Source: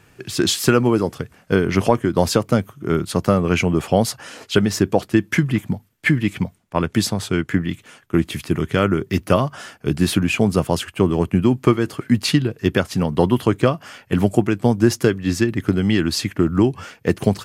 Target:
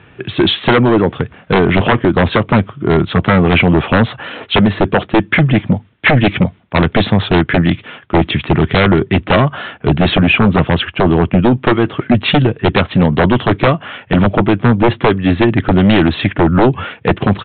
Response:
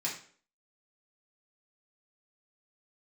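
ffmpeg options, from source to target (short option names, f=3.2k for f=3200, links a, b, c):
-af "highpass=44,dynaudnorm=f=100:g=9:m=11.5dB,aresample=8000,aeval=exprs='0.944*sin(PI/2*3.16*val(0)/0.944)':c=same,aresample=44100,volume=-4dB"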